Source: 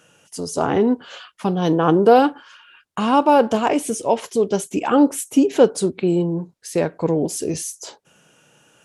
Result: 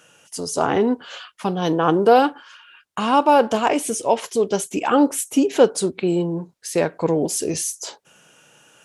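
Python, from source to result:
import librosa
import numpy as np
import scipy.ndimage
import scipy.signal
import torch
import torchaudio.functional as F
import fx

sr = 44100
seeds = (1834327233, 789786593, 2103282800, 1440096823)

p1 = fx.rider(x, sr, range_db=3, speed_s=2.0)
p2 = x + (p1 * librosa.db_to_amplitude(-1.5))
p3 = fx.low_shelf(p2, sr, hz=460.0, db=-6.5)
y = p3 * librosa.db_to_amplitude(-3.0)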